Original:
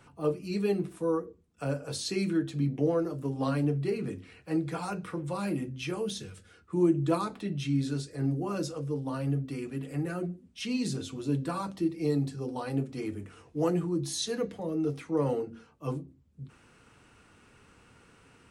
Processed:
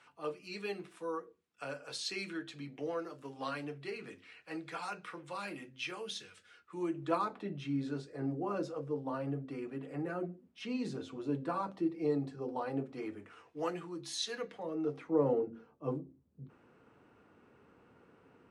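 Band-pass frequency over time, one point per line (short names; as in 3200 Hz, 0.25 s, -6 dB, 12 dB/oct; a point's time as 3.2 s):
band-pass, Q 0.65
6.79 s 2300 Hz
7.41 s 760 Hz
12.8 s 760 Hz
13.77 s 2100 Hz
14.38 s 2100 Hz
15.28 s 440 Hz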